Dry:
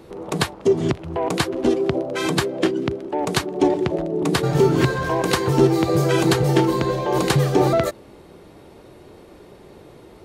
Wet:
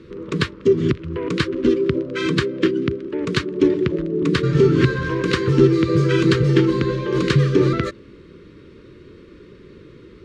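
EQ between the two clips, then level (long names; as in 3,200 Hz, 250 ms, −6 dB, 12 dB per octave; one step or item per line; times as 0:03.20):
Butterworth band-reject 750 Hz, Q 0.99
high-frequency loss of the air 140 metres
+3.0 dB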